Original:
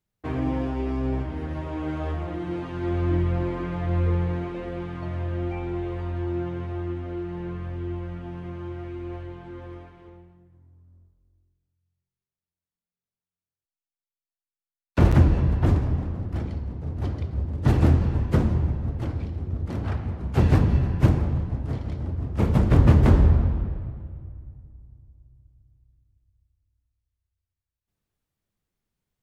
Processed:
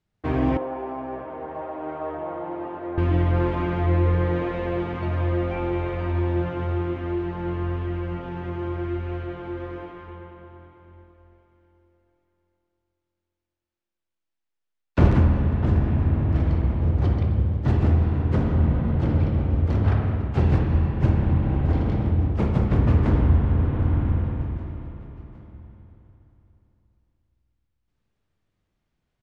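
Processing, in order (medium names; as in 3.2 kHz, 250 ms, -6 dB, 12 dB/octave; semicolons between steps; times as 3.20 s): distance through air 89 m; feedback delay 764 ms, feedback 44%, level -23.5 dB; spring tank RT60 3.4 s, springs 49/59 ms, chirp 80 ms, DRR 0.5 dB; gain riding within 5 dB 0.5 s; 0.57–2.98 s: band-pass filter 750 Hz, Q 1.5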